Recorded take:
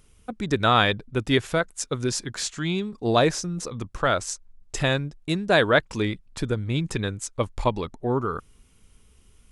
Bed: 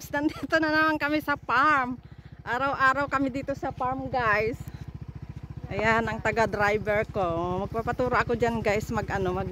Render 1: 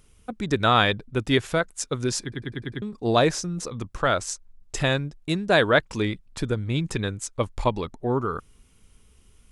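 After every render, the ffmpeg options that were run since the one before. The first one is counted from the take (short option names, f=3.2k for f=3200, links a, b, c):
-filter_complex "[0:a]asplit=7[a][b][c][d][e][f][g];[a]atrim=end=2.322[h];[b]atrim=start=2.218:end=2.322[i];[c]atrim=start=2.218:end=2.322[j];[d]atrim=start=2.218:end=2.322[k];[e]atrim=start=2.218:end=2.322[l];[f]atrim=start=2.218:end=2.322[m];[g]atrim=start=2.818[n];[h][i]acrossfade=d=0.004:c1=hsin:c2=hsin[o];[o][j]acrossfade=d=0.004:c1=hsin:c2=hsin[p];[p][k]acrossfade=d=0.004:c1=hsin:c2=hsin[q];[q][l]acrossfade=d=0.004:c1=hsin:c2=hsin[r];[r][m]acrossfade=d=0.004:c1=hsin:c2=hsin[s];[s][n]acrossfade=d=0.004:c1=hsin:c2=hsin"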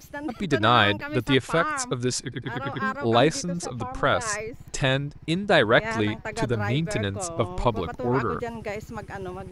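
-filter_complex "[1:a]volume=-7dB[a];[0:a][a]amix=inputs=2:normalize=0"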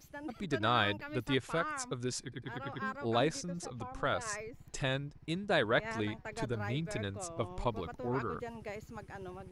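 -af "volume=-11dB"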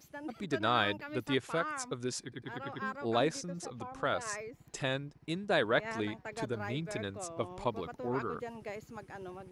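-af "highpass=f=320:p=1,lowshelf=f=440:g=6"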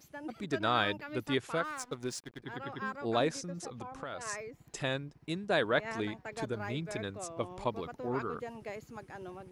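-filter_complex "[0:a]asplit=3[a][b][c];[a]afade=t=out:st=1.63:d=0.02[d];[b]aeval=exprs='sgn(val(0))*max(abs(val(0))-0.00299,0)':c=same,afade=t=in:st=1.63:d=0.02,afade=t=out:st=2.41:d=0.02[e];[c]afade=t=in:st=2.41:d=0.02[f];[d][e][f]amix=inputs=3:normalize=0,asettb=1/sr,asplit=3[g][h][i];[g]atrim=end=3.694[j];[h]atrim=start=3.69:end=4.21,asetpts=PTS-STARTPTS,afade=t=in:d=0.004:c=qsin,afade=t=out:st=0.516:d=0.004:c=qsin,acompressor=threshold=-36dB:ratio=6:attack=3.2:release=140:knee=1:detection=peak[k];[i]atrim=start=4.206[l];[j][k]acrossfade=d=0.004:c1=hsin:c2=qsin[m];[m][l]acrossfade=d=0.004:c1=qsin:c2=hsin"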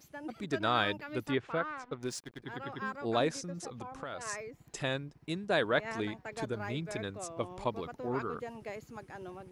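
-filter_complex "[0:a]asettb=1/sr,asplit=3[a][b][c];[a]atrim=end=1.314[d];[b]atrim=start=1.31:end=2.03,asetpts=PTS-STARTPTS,afade=t=in:d=0.004:c=qsin,afade=t=out:st=0.716:d=0.004:c=qsin,lowpass=2.7k[e];[c]atrim=start=2.026[f];[d][e]acrossfade=d=0.004:c1=hsin:c2=qsin[g];[g][f]acrossfade=d=0.004:c1=qsin:c2=hsin"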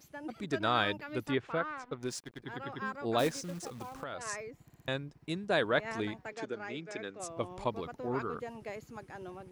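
-filter_complex "[0:a]asplit=3[a][b][c];[a]afade=t=out:st=3.18:d=0.02[d];[b]acrusher=bits=3:mode=log:mix=0:aa=0.000001,afade=t=in:st=3.18:d=0.02,afade=t=out:st=4.02:d=0.02[e];[c]afade=t=in:st=4.02:d=0.02[f];[d][e][f]amix=inputs=3:normalize=0,asettb=1/sr,asplit=3[g][h][i];[g]atrim=end=6.324[j];[h]atrim=start=6.32:end=7.2,asetpts=PTS-STARTPTS,afade=t=in:d=0.004:c=qsin,afade=t=out:st=0.876:d=0.004:c=qsin,highpass=280,equalizer=f=620:t=q:w=4:g=-4,equalizer=f=1k:t=q:w=4:g=-7,equalizer=f=4k:t=q:w=4:g=-6,lowpass=f=6.9k:w=0.5412,lowpass=f=6.9k:w=1.3066[k];[i]atrim=start=7.196[l];[j][k]acrossfade=d=0.004:c1=hsin:c2=qsin[m];[m][l]acrossfade=d=0.004:c1=qsin:c2=hsin,asplit=5[n][o][p][q][r];[n]atrim=end=4.702[s];[o]atrim=start=4.638:end=4.702[t];[p]atrim=start=4.638:end=4.702[u];[q]atrim=start=4.638:end=4.702[v];[r]atrim=start=4.878[w];[s][t]acrossfade=d=0.004:c1=hsin:c2=hsin[x];[x][u]acrossfade=d=0.004:c1=hsin:c2=hsin[y];[y][v]acrossfade=d=0.004:c1=hsin:c2=hsin[z];[z][w]acrossfade=d=0.004:c1=hsin:c2=hsin"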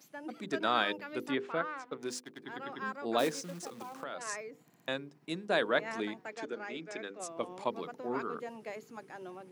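-af "highpass=f=180:w=0.5412,highpass=f=180:w=1.3066,bandreject=f=50:t=h:w=6,bandreject=f=100:t=h:w=6,bandreject=f=150:t=h:w=6,bandreject=f=200:t=h:w=6,bandreject=f=250:t=h:w=6,bandreject=f=300:t=h:w=6,bandreject=f=350:t=h:w=6,bandreject=f=400:t=h:w=6,bandreject=f=450:t=h:w=6,bandreject=f=500:t=h:w=6"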